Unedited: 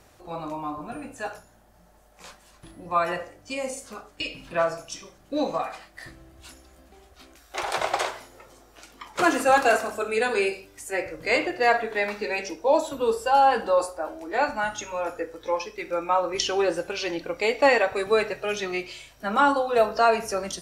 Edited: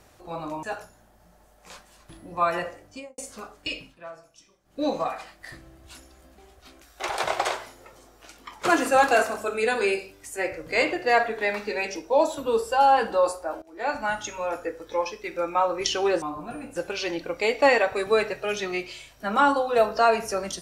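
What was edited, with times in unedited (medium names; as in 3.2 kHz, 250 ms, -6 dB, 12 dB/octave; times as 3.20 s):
0.63–1.17 s: move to 16.76 s
3.38–3.72 s: studio fade out
4.30–5.36 s: dip -17 dB, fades 0.19 s
14.16–14.58 s: fade in linear, from -21 dB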